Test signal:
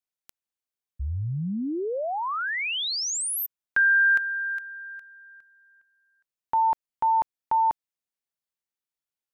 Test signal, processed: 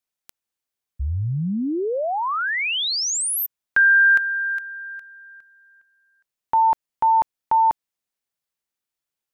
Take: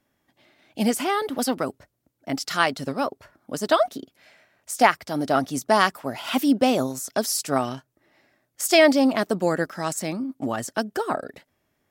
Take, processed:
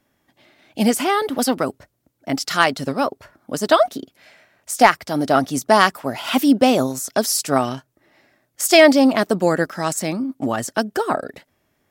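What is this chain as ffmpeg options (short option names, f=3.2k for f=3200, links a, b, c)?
-af "volume=6.5dB,asoftclip=hard,volume=-6.5dB,volume=5dB"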